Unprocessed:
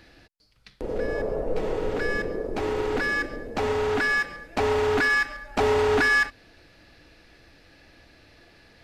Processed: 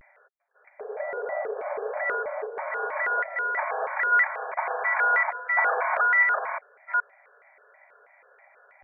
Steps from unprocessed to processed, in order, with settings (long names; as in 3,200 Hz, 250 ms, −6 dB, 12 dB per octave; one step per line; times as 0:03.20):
delay that plays each chunk backwards 412 ms, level −1.5 dB
linear-phase brick-wall band-pass 480–2,100 Hz
pitch modulation by a square or saw wave square 3.1 Hz, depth 250 cents